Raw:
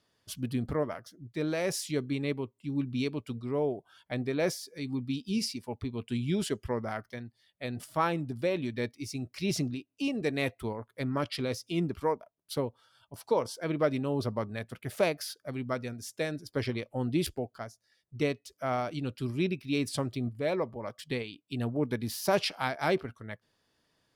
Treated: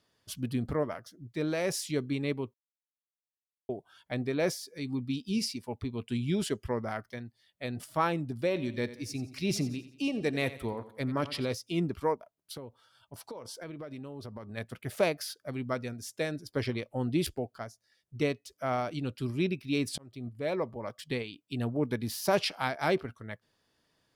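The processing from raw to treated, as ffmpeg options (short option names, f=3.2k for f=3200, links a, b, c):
-filter_complex "[0:a]asettb=1/sr,asplit=3[a][b][c];[a]atrim=end=8.474[d];[b]atrim=start=8.47:end=11.53,asetpts=PTS-STARTPTS,afade=t=in:d=0.004:c=qsin,afade=t=out:st=3.056:d=0.004:c=qsin,aecho=1:1:88|176|264|352:0.178|0.0782|0.0344|0.0151,atrim=end_sample=134946[e];[c]atrim=start=11.526[f];[d][e]acrossfade=d=0.004:c1=hsin:c2=qsin[g];[g][f]acrossfade=d=0.004:c1=qsin:c2=hsin,asplit=3[h][i][j];[h]afade=t=out:st=12.15:d=0.02[k];[i]acompressor=threshold=-38dB:ratio=16:attack=3.2:release=140:knee=1:detection=peak,afade=t=in:st=12.15:d=0.02,afade=t=out:st=14.56:d=0.02[l];[j]afade=t=in:st=14.56:d=0.02[m];[k][l][m]amix=inputs=3:normalize=0,asplit=4[n][o][p][q];[n]atrim=end=2.54,asetpts=PTS-STARTPTS,afade=t=out:st=2.536:d=0.004:c=hsin[r];[o]atrim=start=2.54:end=3.69,asetpts=PTS-STARTPTS,volume=0[s];[p]atrim=start=3.69:end=19.98,asetpts=PTS-STARTPTS,afade=t=in:d=0.004:c=hsin,afade=t=out:st=16.286:d=0.004:c=hsin[t];[q]atrim=start=19.98,asetpts=PTS-STARTPTS,afade=t=in:d=0.86:c=qsin[u];[r][s][t][u]concat=n=4:v=0:a=1"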